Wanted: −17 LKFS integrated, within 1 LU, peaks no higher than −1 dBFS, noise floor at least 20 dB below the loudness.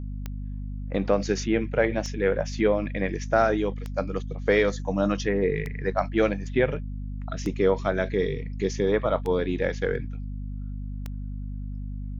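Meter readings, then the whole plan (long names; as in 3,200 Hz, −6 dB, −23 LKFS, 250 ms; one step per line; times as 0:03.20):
number of clicks 7; mains hum 50 Hz; hum harmonics up to 250 Hz; level of the hum −30 dBFS; integrated loudness −27.0 LKFS; sample peak −7.5 dBFS; target loudness −17.0 LKFS
→ click removal
hum removal 50 Hz, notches 5
level +10 dB
brickwall limiter −1 dBFS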